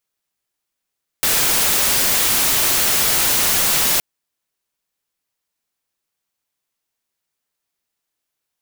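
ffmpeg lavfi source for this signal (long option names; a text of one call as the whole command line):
ffmpeg -f lavfi -i "anoisesrc=color=white:amplitude=0.259:duration=2.77:sample_rate=44100:seed=1" out.wav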